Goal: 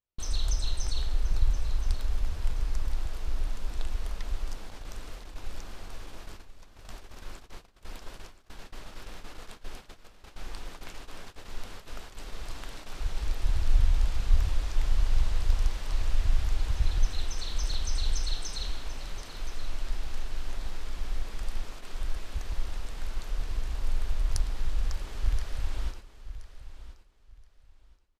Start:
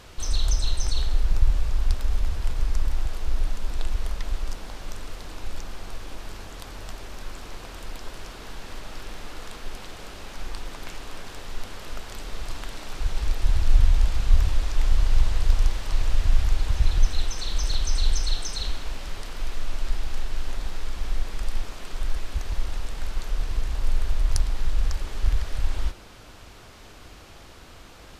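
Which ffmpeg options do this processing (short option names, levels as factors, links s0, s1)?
-af "agate=range=0.00631:threshold=0.02:ratio=16:detection=peak,aecho=1:1:1025|2050|3075:0.2|0.0459|0.0106,volume=0.531"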